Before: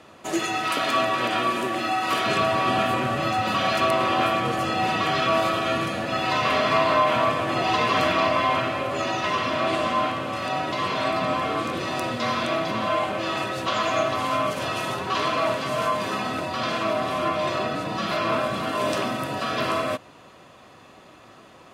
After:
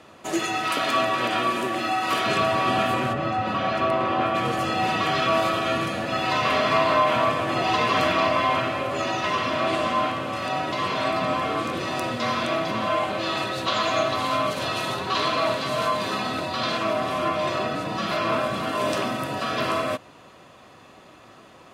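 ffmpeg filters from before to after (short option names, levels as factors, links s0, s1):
-filter_complex "[0:a]asplit=3[s0][s1][s2];[s0]afade=t=out:st=3.12:d=0.02[s3];[s1]lowpass=f=1600:p=1,afade=t=in:st=3.12:d=0.02,afade=t=out:st=4.34:d=0.02[s4];[s2]afade=t=in:st=4.34:d=0.02[s5];[s3][s4][s5]amix=inputs=3:normalize=0,asettb=1/sr,asplit=3[s6][s7][s8];[s6]atrim=end=13.094[s9];[s7]atrim=start=13.09:end=16.77,asetpts=PTS-STARTPTS,afade=t=in:d=0.004:c=qsin,afade=t=out:st=3.676:d=0.004:c=qsin,equalizer=f=4000:w=4.2:g=7.5[s10];[s8]atrim=start=16.766[s11];[s9][s10]acrossfade=d=0.004:c1=hsin:c2=qsin[s12];[s12][s11]acrossfade=d=0.004:c1=qsin:c2=hsin"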